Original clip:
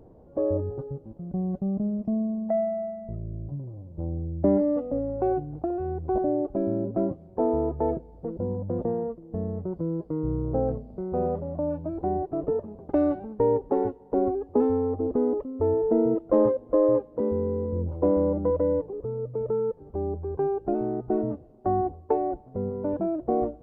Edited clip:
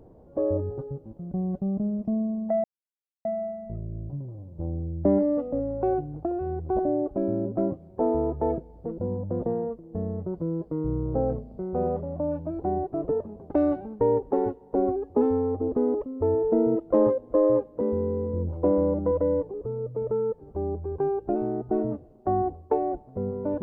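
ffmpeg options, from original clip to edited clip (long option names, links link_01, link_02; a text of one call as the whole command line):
ffmpeg -i in.wav -filter_complex "[0:a]asplit=2[link_01][link_02];[link_01]atrim=end=2.64,asetpts=PTS-STARTPTS,afade=type=out:start_time=2.636:duration=0.004:curve=hsin,apad=pad_dur=0.61[link_03];[link_02]atrim=start=2.64,asetpts=PTS-STARTPTS,afade=type=in:duration=0.004:curve=hsin[link_04];[link_03][link_04]concat=n=2:v=0:a=1" out.wav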